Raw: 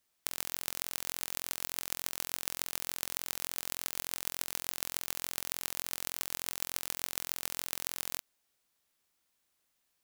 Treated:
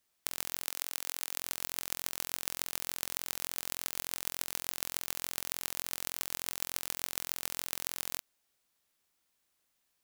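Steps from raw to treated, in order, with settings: 0.65–1.39 HPF 490 Hz 6 dB/oct

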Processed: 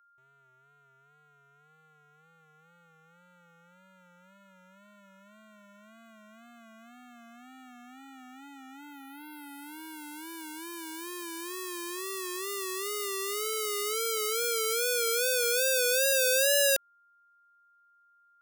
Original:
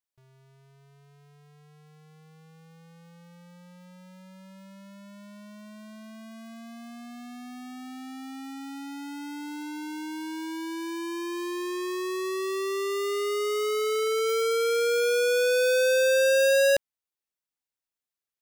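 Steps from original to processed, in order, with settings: Wiener smoothing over 9 samples; wow and flutter 79 cents; whine 1400 Hz -58 dBFS; RIAA curve recording; gain -5 dB

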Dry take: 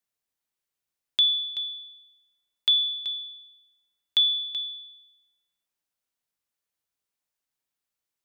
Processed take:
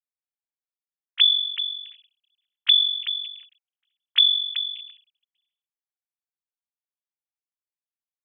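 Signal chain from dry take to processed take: sine-wave speech; gain +4 dB

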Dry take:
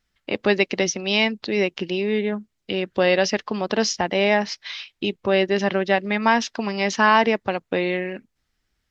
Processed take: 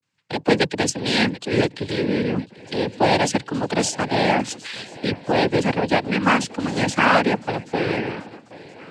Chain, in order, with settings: octaver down 2 oct, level -1 dB; low shelf 150 Hz +7 dB; swung echo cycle 1.01 s, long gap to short 3:1, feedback 36%, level -20 dB; vibrato 0.36 Hz 78 cents; noise vocoder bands 8

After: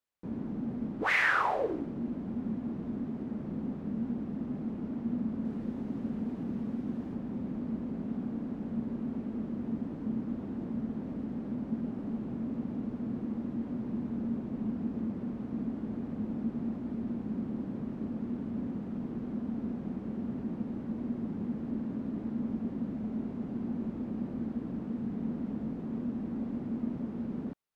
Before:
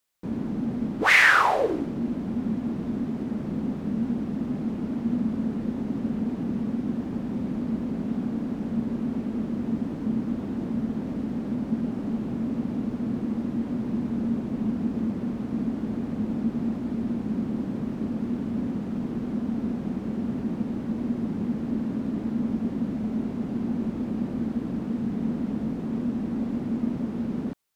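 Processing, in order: high shelf 3100 Hz -11 dB, from 5.45 s -5.5 dB, from 7.14 s -10 dB; gain -7 dB

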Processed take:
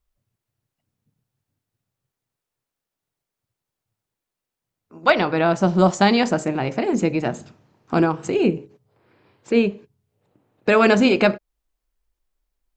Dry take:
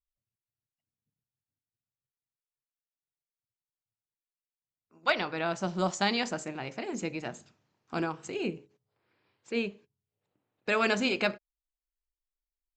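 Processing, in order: tilt shelf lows +5 dB, about 1300 Hz; in parallel at -2.5 dB: compressor, threshold -36 dBFS, peak gain reduction 15 dB; on the sum: gain +8.5 dB

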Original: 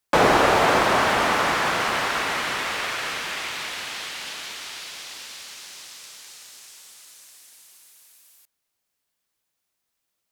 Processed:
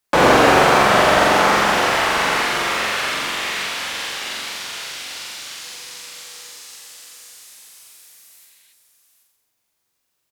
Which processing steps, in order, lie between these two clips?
on a send: flutter echo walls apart 7.5 m, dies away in 1 s; 5.61–6.55 on the sum: whine 490 Hz -55 dBFS; echo 0.779 s -10.5 dB; 8.28–8.7 spectral repair 1500–4500 Hz before; gain +2 dB

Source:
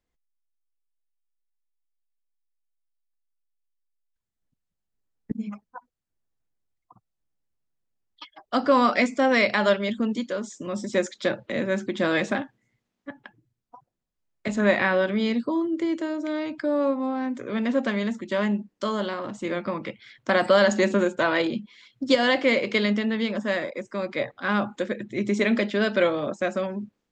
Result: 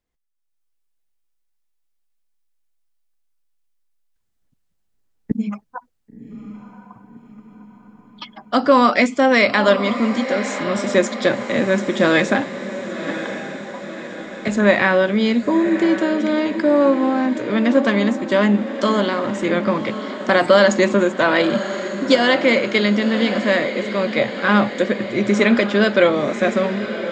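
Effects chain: AGC gain up to 9 dB; diffused feedback echo 1.066 s, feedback 56%, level -10.5 dB

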